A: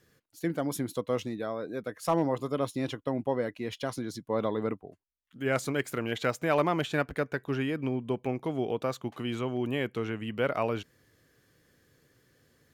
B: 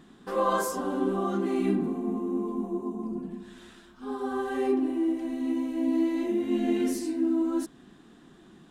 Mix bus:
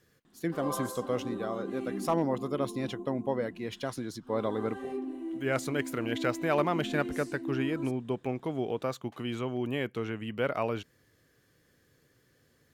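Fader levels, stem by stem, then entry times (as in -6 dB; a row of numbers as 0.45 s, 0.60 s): -1.5 dB, -10.5 dB; 0.00 s, 0.25 s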